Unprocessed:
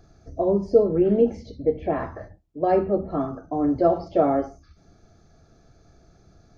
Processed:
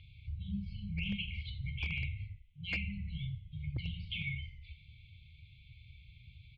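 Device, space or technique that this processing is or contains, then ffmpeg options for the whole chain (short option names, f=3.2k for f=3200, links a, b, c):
synthesiser wavefolder: -filter_complex "[0:a]highpass=52,afftfilt=real='re*(1-between(b*sr/4096,210,2100))':imag='im*(1-between(b*sr/4096,210,2100))':win_size=4096:overlap=0.75,firequalizer=gain_entry='entry(120,0);entry(170,-15);entry(400,-28);entry(610,-14);entry(880,-12);entry(1300,6);entry(2200,11);entry(3200,14);entry(5300,-20);entry(8500,-30)':delay=0.05:min_phase=1,asplit=5[a][b][c][d][e];[b]adelay=86,afreqshift=-40,volume=-16.5dB[f];[c]adelay=172,afreqshift=-80,volume=-23.1dB[g];[d]adelay=258,afreqshift=-120,volume=-29.6dB[h];[e]adelay=344,afreqshift=-160,volume=-36.2dB[i];[a][f][g][h][i]amix=inputs=5:normalize=0,aeval=exprs='0.0266*(abs(mod(val(0)/0.0266+3,4)-2)-1)':c=same,lowpass=f=4.1k:w=0.5412,lowpass=f=4.1k:w=1.3066,volume=3.5dB"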